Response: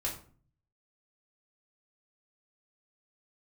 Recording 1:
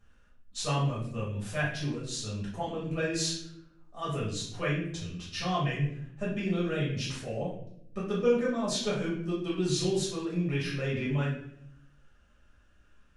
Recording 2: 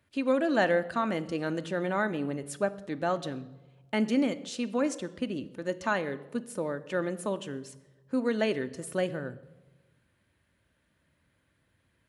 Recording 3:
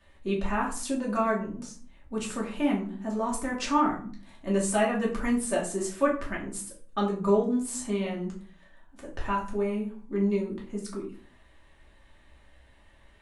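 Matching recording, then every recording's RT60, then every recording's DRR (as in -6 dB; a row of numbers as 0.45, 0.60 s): 3; 0.70, 1.1, 0.45 s; -8.0, 10.0, -4.0 dB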